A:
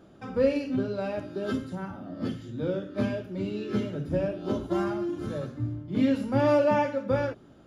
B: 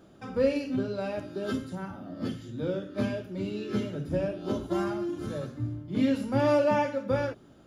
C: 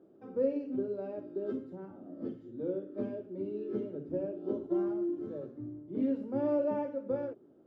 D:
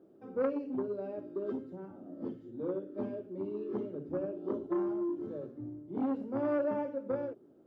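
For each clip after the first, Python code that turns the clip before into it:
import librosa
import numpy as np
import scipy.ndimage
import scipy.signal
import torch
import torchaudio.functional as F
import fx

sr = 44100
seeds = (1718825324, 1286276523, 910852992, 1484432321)

y1 = fx.high_shelf(x, sr, hz=4500.0, db=6.0)
y1 = y1 * 10.0 ** (-1.5 / 20.0)
y2 = fx.bandpass_q(y1, sr, hz=380.0, q=2.2)
y3 = fx.transformer_sat(y2, sr, knee_hz=650.0)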